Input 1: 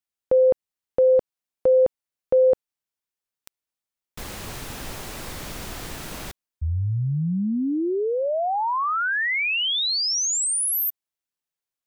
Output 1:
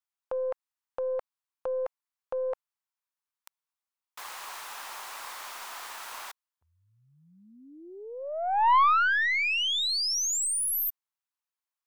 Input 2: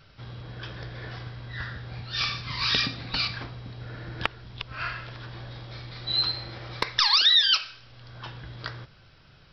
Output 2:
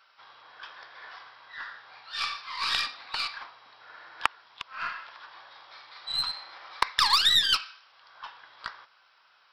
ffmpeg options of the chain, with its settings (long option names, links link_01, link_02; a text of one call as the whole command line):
ffmpeg -i in.wav -af "highpass=frequency=990:width_type=q:width=2.4,aeval=exprs='0.891*(cos(1*acos(clip(val(0)/0.891,-1,1)))-cos(1*PI/2))+0.1*(cos(2*acos(clip(val(0)/0.891,-1,1)))-cos(2*PI/2))+0.0501*(cos(7*acos(clip(val(0)/0.891,-1,1)))-cos(7*PI/2))+0.0316*(cos(8*acos(clip(val(0)/0.891,-1,1)))-cos(8*PI/2))':channel_layout=same,volume=-1dB" out.wav